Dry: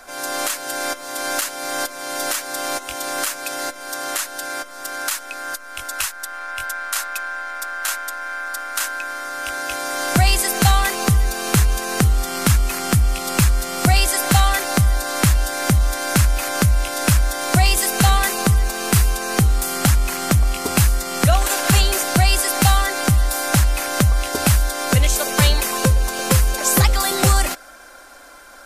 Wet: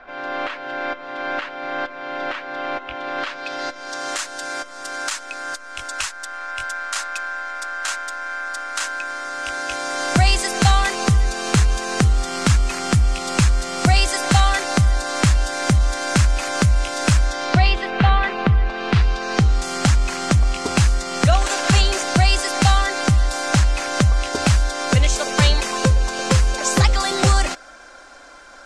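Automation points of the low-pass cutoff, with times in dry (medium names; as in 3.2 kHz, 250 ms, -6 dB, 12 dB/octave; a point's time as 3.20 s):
low-pass 24 dB/octave
3.02 s 3 kHz
4.19 s 7.9 kHz
17.19 s 7.9 kHz
17.88 s 3.2 kHz
18.64 s 3.2 kHz
19.72 s 7.4 kHz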